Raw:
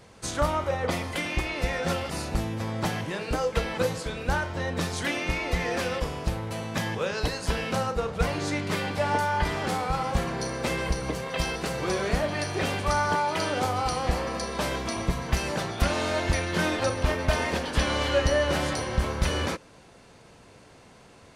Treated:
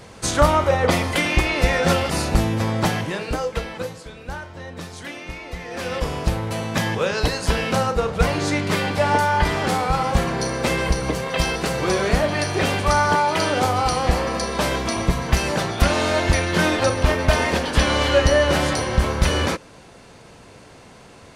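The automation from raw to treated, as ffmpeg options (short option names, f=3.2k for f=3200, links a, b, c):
-af "volume=22dB,afade=t=out:st=2.59:d=0.84:silence=0.421697,afade=t=out:st=3.43:d=0.52:silence=0.421697,afade=t=in:st=5.69:d=0.45:silence=0.237137"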